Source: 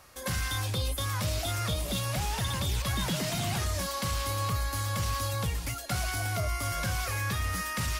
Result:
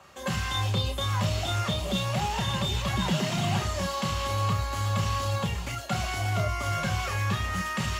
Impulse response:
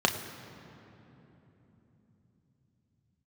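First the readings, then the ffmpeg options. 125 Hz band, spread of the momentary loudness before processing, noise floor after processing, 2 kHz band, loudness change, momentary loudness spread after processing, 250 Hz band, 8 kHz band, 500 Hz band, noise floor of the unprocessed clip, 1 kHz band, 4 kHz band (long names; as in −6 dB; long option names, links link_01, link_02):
+3.5 dB, 2 LU, −35 dBFS, +2.0 dB, +2.5 dB, 3 LU, +5.5 dB, −3.0 dB, +4.0 dB, −39 dBFS, +4.5 dB, +3.0 dB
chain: -filter_complex "[1:a]atrim=start_sample=2205,atrim=end_sample=3528[link_01];[0:a][link_01]afir=irnorm=-1:irlink=0,volume=-8.5dB"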